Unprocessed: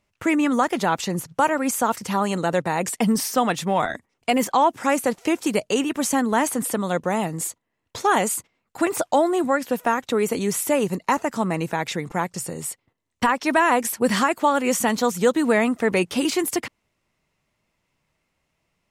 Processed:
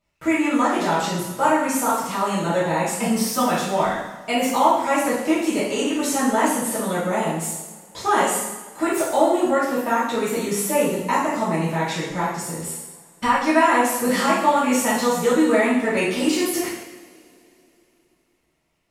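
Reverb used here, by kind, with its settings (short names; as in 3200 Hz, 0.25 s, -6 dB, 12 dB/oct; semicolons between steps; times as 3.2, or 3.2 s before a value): two-slope reverb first 0.91 s, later 3.4 s, from -22 dB, DRR -10 dB; gain -9 dB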